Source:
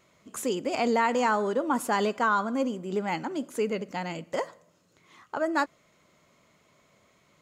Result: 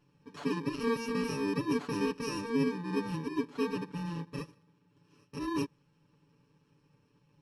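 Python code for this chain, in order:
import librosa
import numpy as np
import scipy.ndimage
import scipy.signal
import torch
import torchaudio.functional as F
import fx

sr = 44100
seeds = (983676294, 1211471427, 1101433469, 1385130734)

y = fx.bit_reversed(x, sr, seeds[0], block=64)
y = fx.spacing_loss(y, sr, db_at_10k=31)
y = y + 0.98 * np.pad(y, (int(6.9 * sr / 1000.0), 0))[:len(y)]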